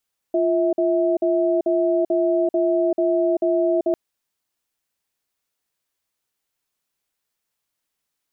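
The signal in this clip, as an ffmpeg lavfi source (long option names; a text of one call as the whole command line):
ffmpeg -f lavfi -i "aevalsrc='0.112*(sin(2*PI*347*t)+sin(2*PI*650*t))*clip(min(mod(t,0.44),0.39-mod(t,0.44))/0.005,0,1)':duration=3.6:sample_rate=44100" out.wav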